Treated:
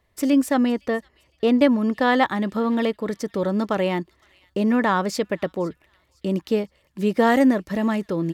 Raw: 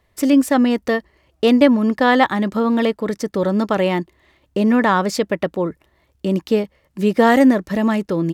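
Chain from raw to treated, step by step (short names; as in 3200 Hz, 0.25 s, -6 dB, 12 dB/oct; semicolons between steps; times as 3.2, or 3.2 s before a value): 0.7–1.59 high shelf 3300 Hz -9.5 dB; thin delay 0.511 s, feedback 33%, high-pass 2600 Hz, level -21.5 dB; gain -4.5 dB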